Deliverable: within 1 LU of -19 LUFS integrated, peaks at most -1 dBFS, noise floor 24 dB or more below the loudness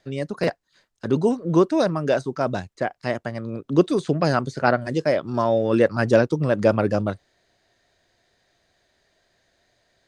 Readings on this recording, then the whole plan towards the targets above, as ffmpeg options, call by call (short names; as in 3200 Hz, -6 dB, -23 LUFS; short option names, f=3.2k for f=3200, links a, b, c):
loudness -22.0 LUFS; peak -1.5 dBFS; loudness target -19.0 LUFS
-> -af "volume=3dB,alimiter=limit=-1dB:level=0:latency=1"